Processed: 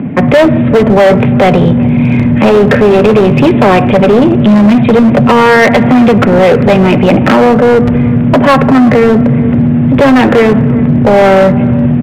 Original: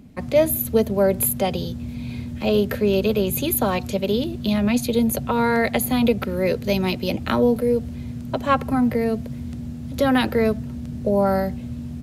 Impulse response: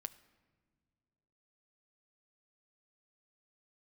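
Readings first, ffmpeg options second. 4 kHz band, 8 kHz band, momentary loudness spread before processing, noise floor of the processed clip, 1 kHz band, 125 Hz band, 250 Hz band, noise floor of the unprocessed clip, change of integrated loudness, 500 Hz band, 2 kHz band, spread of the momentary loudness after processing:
+10.5 dB, can't be measured, 12 LU, −9 dBFS, +16.0 dB, +18.0 dB, +16.5 dB, −33 dBFS, +15.0 dB, +14.5 dB, +16.5 dB, 3 LU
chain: -filter_complex "[0:a]aresample=8000,asoftclip=type=tanh:threshold=-20dB,aresample=44100,acompressor=threshold=-25dB:ratio=12,aecho=1:1:376:0.075,acrossover=split=110|1500[link_01][link_02][link_03];[link_01]acrusher=bits=4:mix=0:aa=0.000001[link_04];[link_04][link_02][link_03]amix=inputs=3:normalize=0,lowpass=frequency=2300:width=0.5412,lowpass=frequency=2300:width=1.3066,equalizer=frequency=1300:width_type=o:width=0.28:gain=-2[link_05];[1:a]atrim=start_sample=2205[link_06];[link_05][link_06]afir=irnorm=-1:irlink=0,volume=32dB,asoftclip=hard,volume=-32dB,acontrast=30,alimiter=level_in=30.5dB:limit=-1dB:release=50:level=0:latency=1,volume=-1dB"

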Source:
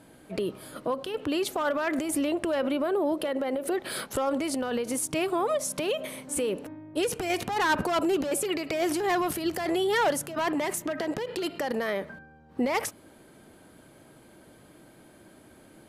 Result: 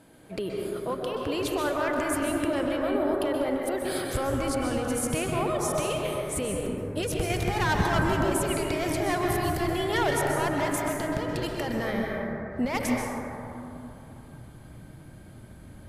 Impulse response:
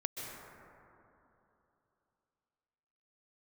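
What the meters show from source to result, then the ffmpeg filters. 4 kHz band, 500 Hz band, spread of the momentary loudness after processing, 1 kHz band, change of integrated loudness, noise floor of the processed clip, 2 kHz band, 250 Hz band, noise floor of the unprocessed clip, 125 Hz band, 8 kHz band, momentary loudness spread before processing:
−0.5 dB, +0.5 dB, 18 LU, +1.0 dB, +1.0 dB, −47 dBFS, +1.5 dB, +1.0 dB, −54 dBFS, +13.0 dB, −0.5 dB, 7 LU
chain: -filter_complex "[0:a]asubboost=boost=7.5:cutoff=130[link_01];[1:a]atrim=start_sample=2205[link_02];[link_01][link_02]afir=irnorm=-1:irlink=0"

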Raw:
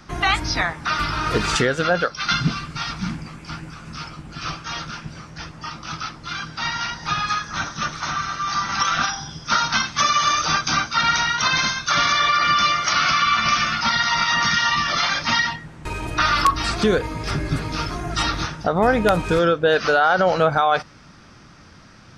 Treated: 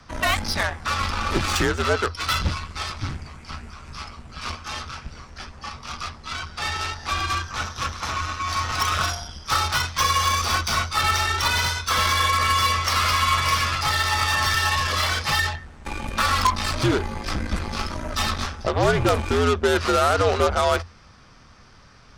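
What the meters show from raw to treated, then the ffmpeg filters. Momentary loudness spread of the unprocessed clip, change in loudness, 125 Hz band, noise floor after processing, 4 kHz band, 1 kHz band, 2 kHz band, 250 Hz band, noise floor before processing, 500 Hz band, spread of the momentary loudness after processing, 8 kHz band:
15 LU, −2.5 dB, +1.5 dB, −48 dBFS, −2.0 dB, −2.5 dB, −3.5 dB, −3.5 dB, −46 dBFS, −2.5 dB, 15 LU, −0.5 dB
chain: -af "aeval=exprs='0.447*(cos(1*acos(clip(val(0)/0.447,-1,1)))-cos(1*PI/2))+0.0501*(cos(6*acos(clip(val(0)/0.447,-1,1)))-cos(6*PI/2))+0.0891*(cos(8*acos(clip(val(0)/0.447,-1,1)))-cos(8*PI/2))':channel_layout=same,afreqshift=-86,volume=-3dB"

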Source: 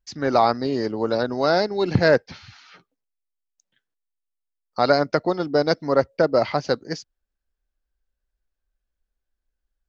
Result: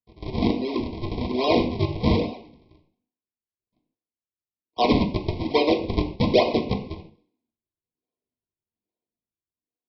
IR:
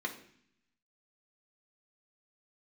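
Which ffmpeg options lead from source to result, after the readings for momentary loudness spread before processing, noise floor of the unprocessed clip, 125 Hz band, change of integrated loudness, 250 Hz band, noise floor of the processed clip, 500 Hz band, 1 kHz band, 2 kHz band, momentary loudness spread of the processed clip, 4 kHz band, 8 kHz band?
6 LU, −82 dBFS, +2.0 dB, −2.5 dB, +2.0 dB, below −85 dBFS, −4.5 dB, −4.5 dB, −7.0 dB, 11 LU, +0.5 dB, can't be measured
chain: -filter_complex "[0:a]highpass=frequency=240:width=0.5412,highpass=frequency=240:width=1.3066,highshelf=frequency=2200:gain=-5.5,bandreject=frequency=60:width_type=h:width=6,bandreject=frequency=120:width_type=h:width=6,bandreject=frequency=180:width_type=h:width=6,bandreject=frequency=240:width_type=h:width=6,bandreject=frequency=300:width_type=h:width=6,bandreject=frequency=360:width_type=h:width=6,bandreject=frequency=420:width_type=h:width=6,bandreject=frequency=480:width_type=h:width=6,dynaudnorm=framelen=200:gausssize=9:maxgain=5.5dB,flanger=delay=6.9:depth=8.6:regen=-89:speed=0.73:shape=sinusoidal,aresample=11025,acrusher=samples=26:mix=1:aa=0.000001:lfo=1:lforange=41.6:lforate=1.2,aresample=44100,asuperstop=centerf=1500:order=12:qfactor=1.4[link_01];[1:a]atrim=start_sample=2205,afade=type=out:start_time=0.21:duration=0.01,atrim=end_sample=9702[link_02];[link_01][link_02]afir=irnorm=-1:irlink=0,volume=-1dB"

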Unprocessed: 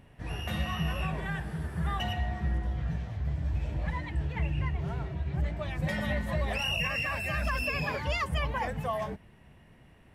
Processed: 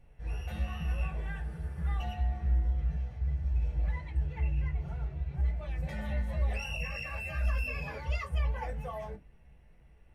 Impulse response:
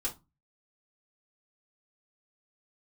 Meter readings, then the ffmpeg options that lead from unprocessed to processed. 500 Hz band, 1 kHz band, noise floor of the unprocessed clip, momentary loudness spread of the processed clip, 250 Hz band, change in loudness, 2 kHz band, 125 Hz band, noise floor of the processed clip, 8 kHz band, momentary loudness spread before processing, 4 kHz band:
−7.5 dB, −8.5 dB, −57 dBFS, 7 LU, −8.5 dB, −2.5 dB, −8.0 dB, −1.0 dB, −57 dBFS, −8.0 dB, 5 LU, −12.5 dB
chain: -filter_complex "[1:a]atrim=start_sample=2205,asetrate=74970,aresample=44100[link_01];[0:a][link_01]afir=irnorm=-1:irlink=0,volume=-7dB"

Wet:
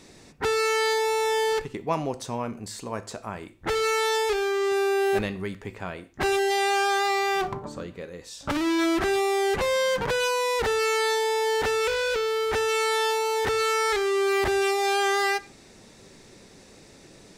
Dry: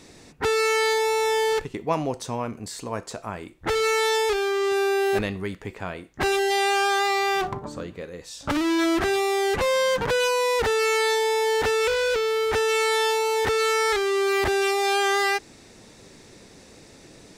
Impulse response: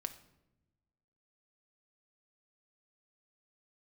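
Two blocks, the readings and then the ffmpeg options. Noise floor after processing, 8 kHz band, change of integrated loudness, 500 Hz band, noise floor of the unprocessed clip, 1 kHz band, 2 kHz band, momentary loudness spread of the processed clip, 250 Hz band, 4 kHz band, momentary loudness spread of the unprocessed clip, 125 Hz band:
−51 dBFS, −2.0 dB, −2.0 dB, −2.0 dB, −49 dBFS, −1.0 dB, −2.0 dB, 12 LU, −1.5 dB, −2.0 dB, 12 LU, −2.0 dB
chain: -filter_complex "[0:a]asplit=2[link_01][link_02];[1:a]atrim=start_sample=2205,atrim=end_sample=6615[link_03];[link_02][link_03]afir=irnorm=-1:irlink=0,volume=0dB[link_04];[link_01][link_04]amix=inputs=2:normalize=0,volume=-7dB"

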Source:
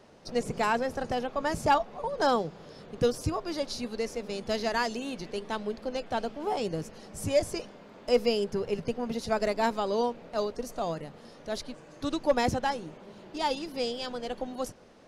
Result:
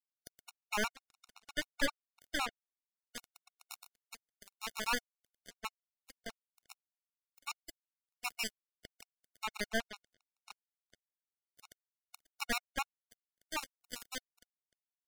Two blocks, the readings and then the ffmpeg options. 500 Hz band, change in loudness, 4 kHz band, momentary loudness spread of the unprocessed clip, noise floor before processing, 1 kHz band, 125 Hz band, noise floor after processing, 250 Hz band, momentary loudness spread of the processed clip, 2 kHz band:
−20.5 dB, −9.5 dB, −6.0 dB, 12 LU, −51 dBFS, −14.0 dB, −22.5 dB, below −85 dBFS, −16.0 dB, 23 LU, −4.0 dB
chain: -filter_complex "[0:a]asuperpass=centerf=3400:order=4:qfactor=0.8,equalizer=frequency=3500:width=1.2:gain=-6.5,acrossover=split=4700[link_01][link_02];[link_01]adelay=120[link_03];[link_03][link_02]amix=inputs=2:normalize=0,adynamicsmooth=sensitivity=7:basefreq=2700,aemphasis=mode=production:type=50kf,asplit=2[link_04][link_05];[link_05]aecho=0:1:597:0.211[link_06];[link_04][link_06]amix=inputs=2:normalize=0,aeval=exprs='(tanh(63.1*val(0)+0.55)-tanh(0.55))/63.1':channel_layout=same,acompressor=mode=upward:threshold=-49dB:ratio=2.5,acrusher=bits=5:mix=0:aa=0.5,afftfilt=real='re*gt(sin(2*PI*7.7*pts/sr)*(1-2*mod(floor(b*sr/1024/730),2)),0)':imag='im*gt(sin(2*PI*7.7*pts/sr)*(1-2*mod(floor(b*sr/1024/730),2)),0)':win_size=1024:overlap=0.75,volume=13.5dB"

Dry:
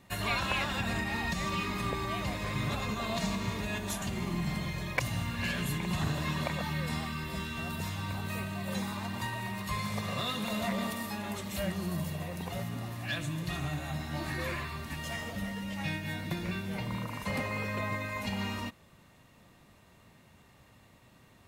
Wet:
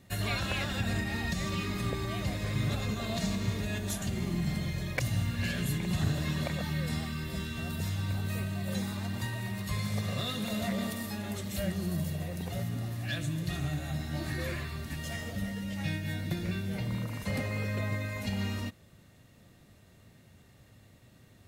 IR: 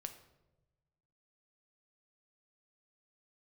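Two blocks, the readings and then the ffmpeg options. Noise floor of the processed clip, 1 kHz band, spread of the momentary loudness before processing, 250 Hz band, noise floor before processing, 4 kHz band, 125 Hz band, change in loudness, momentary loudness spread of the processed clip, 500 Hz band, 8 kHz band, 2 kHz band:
−59 dBFS, −6.0 dB, 5 LU, +1.5 dB, −60 dBFS, −0.5 dB, +3.5 dB, +0.5 dB, 5 LU, −0.5 dB, +1.0 dB, −2.5 dB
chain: -af "equalizer=frequency=100:width_type=o:width=0.67:gain=5,equalizer=frequency=1000:width_type=o:width=0.67:gain=-10,equalizer=frequency=2500:width_type=o:width=0.67:gain=-4,volume=1dB"

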